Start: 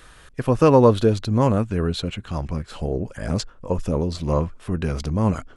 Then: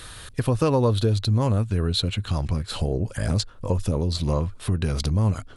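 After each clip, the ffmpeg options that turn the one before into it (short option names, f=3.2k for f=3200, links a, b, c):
-af "equalizer=f=100:t=o:w=0.67:g=10,equalizer=f=4k:t=o:w=0.67:g=9,equalizer=f=10k:t=o:w=0.67:g=10,acompressor=threshold=-27dB:ratio=2.5,volume=4dB"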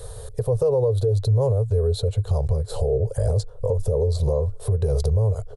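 -af "firequalizer=gain_entry='entry(120,0);entry(180,-16);entry(300,-27);entry(430,9);entry(640,0);entry(1300,-18);entry(2600,-25);entry(3900,-16);entry(8500,-8)':delay=0.05:min_phase=1,alimiter=limit=-21dB:level=0:latency=1:release=177,volume=8dB"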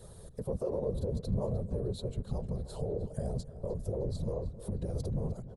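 -filter_complex "[0:a]afftfilt=real='hypot(re,im)*cos(2*PI*random(0))':imag='hypot(re,im)*sin(2*PI*random(1))':win_size=512:overlap=0.75,asplit=2[a][b];[b]adelay=307,lowpass=f=4.2k:p=1,volume=-15dB,asplit=2[c][d];[d]adelay=307,lowpass=f=4.2k:p=1,volume=0.49,asplit=2[e][f];[f]adelay=307,lowpass=f=4.2k:p=1,volume=0.49,asplit=2[g][h];[h]adelay=307,lowpass=f=4.2k:p=1,volume=0.49,asplit=2[i][j];[j]adelay=307,lowpass=f=4.2k:p=1,volume=0.49[k];[a][c][e][g][i][k]amix=inputs=6:normalize=0,volume=-7.5dB"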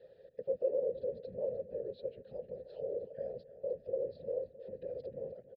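-filter_complex "[0:a]asplit=3[a][b][c];[a]bandpass=f=530:t=q:w=8,volume=0dB[d];[b]bandpass=f=1.84k:t=q:w=8,volume=-6dB[e];[c]bandpass=f=2.48k:t=q:w=8,volume=-9dB[f];[d][e][f]amix=inputs=3:normalize=0,aresample=11025,aresample=44100,volume=5.5dB"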